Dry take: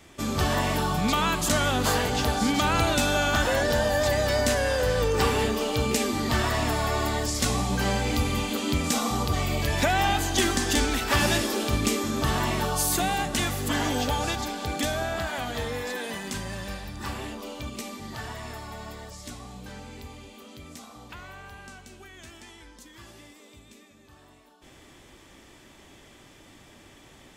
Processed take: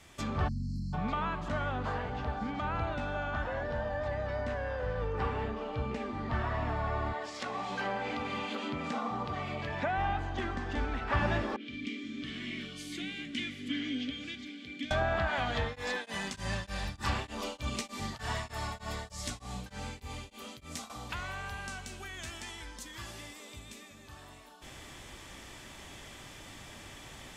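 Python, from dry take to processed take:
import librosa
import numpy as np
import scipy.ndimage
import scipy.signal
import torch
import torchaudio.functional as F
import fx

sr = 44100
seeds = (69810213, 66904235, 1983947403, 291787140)

y = fx.spec_erase(x, sr, start_s=0.48, length_s=0.45, low_hz=300.0, high_hz=4100.0)
y = fx.highpass(y, sr, hz=fx.line((7.12, 400.0), (9.96, 120.0)), slope=12, at=(7.12, 9.96), fade=0.02)
y = fx.vowel_filter(y, sr, vowel='i', at=(11.56, 14.91))
y = fx.tremolo_abs(y, sr, hz=3.3, at=(15.61, 20.9))
y = fx.env_lowpass_down(y, sr, base_hz=1600.0, full_db=-24.0)
y = fx.peak_eq(y, sr, hz=330.0, db=-6.5, octaves=1.5)
y = fx.rider(y, sr, range_db=10, speed_s=2.0)
y = y * librosa.db_to_amplitude(-5.0)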